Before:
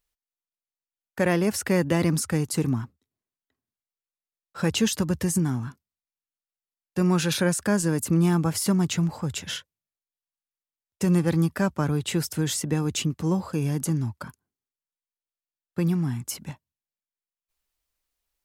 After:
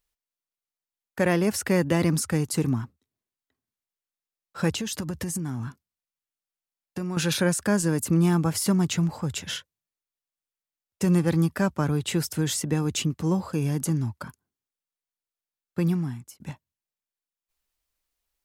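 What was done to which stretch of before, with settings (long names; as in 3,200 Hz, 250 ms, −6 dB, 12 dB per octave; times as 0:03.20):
0:04.70–0:07.17: downward compressor 10 to 1, threshold −26 dBFS
0:15.90–0:16.40: fade out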